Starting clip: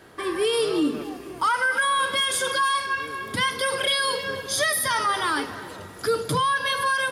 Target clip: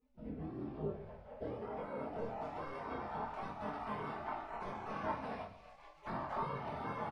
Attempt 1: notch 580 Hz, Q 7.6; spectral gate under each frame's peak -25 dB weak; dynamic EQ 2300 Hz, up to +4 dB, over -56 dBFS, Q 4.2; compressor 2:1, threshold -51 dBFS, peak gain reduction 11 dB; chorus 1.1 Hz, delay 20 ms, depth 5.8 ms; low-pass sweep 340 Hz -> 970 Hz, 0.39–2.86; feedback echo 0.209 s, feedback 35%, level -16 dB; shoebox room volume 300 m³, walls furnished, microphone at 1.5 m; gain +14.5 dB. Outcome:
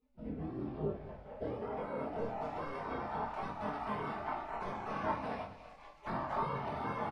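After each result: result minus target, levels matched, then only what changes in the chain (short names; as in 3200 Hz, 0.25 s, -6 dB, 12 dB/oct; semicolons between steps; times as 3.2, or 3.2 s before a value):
echo 67 ms late; compressor: peak gain reduction -3 dB
change: feedback echo 0.142 s, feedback 35%, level -16 dB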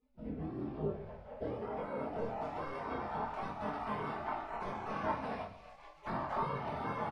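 compressor: peak gain reduction -3 dB
change: compressor 2:1, threshold -57.5 dBFS, peak gain reduction 14 dB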